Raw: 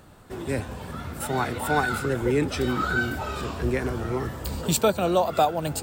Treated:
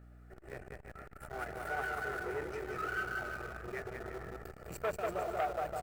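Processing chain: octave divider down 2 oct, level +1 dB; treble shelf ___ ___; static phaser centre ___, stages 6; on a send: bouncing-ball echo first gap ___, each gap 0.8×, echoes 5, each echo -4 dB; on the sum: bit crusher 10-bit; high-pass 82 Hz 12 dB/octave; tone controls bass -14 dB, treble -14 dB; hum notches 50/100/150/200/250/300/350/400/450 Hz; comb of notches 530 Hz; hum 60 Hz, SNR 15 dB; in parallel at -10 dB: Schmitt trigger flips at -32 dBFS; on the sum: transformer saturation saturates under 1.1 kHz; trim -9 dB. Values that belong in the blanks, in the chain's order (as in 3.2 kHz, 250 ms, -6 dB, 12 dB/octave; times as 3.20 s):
11 kHz, +5 dB, 950 Hz, 190 ms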